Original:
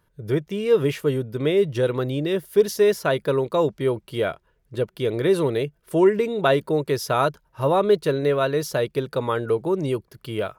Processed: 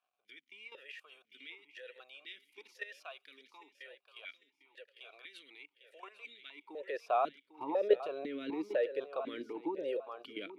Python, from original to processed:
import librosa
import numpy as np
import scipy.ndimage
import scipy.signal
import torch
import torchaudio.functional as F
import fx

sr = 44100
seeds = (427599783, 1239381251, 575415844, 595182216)

p1 = fx.level_steps(x, sr, step_db=14)
p2 = fx.filter_sweep_highpass(p1, sr, from_hz=2100.0, to_hz=370.0, start_s=6.49, end_s=7.04, q=0.72)
p3 = fx.dmg_crackle(p2, sr, seeds[0], per_s=250.0, level_db=-62.0)
p4 = p3 + fx.echo_feedback(p3, sr, ms=800, feedback_pct=28, wet_db=-11.5, dry=0)
p5 = fx.vowel_held(p4, sr, hz=4.0)
y = p5 * 10.0 ** (6.5 / 20.0)